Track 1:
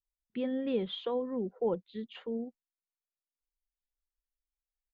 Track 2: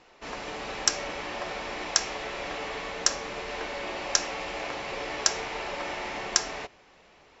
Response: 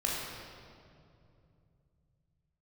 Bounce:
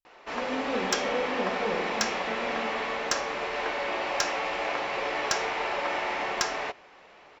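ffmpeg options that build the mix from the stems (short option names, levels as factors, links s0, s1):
-filter_complex "[0:a]volume=0.447,asplit=2[s0][s1];[s1]volume=0.794[s2];[1:a]asplit=2[s3][s4];[s4]highpass=f=720:p=1,volume=5.62,asoftclip=type=tanh:threshold=0.708[s5];[s3][s5]amix=inputs=2:normalize=0,lowpass=f=1700:p=1,volume=0.501,adelay=50,volume=0.841[s6];[2:a]atrim=start_sample=2205[s7];[s2][s7]afir=irnorm=-1:irlink=0[s8];[s0][s6][s8]amix=inputs=3:normalize=0"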